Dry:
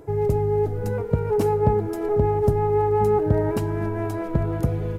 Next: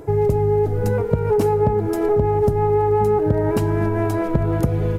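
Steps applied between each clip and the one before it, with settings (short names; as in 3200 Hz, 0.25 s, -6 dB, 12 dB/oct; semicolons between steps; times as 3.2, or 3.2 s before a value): compressor, threshold -21 dBFS, peak gain reduction 8.5 dB; gain +7 dB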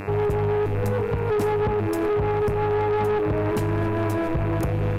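buzz 100 Hz, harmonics 27, -34 dBFS -3 dB/oct; soft clip -19 dBFS, distortion -11 dB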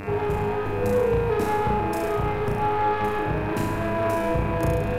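flutter echo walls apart 5.9 m, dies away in 0.91 s; gain -2 dB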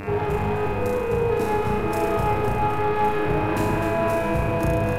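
vocal rider 0.5 s; echo with dull and thin repeats by turns 0.128 s, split 830 Hz, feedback 79%, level -5 dB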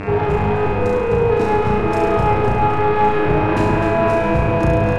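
air absorption 85 m; gain +6.5 dB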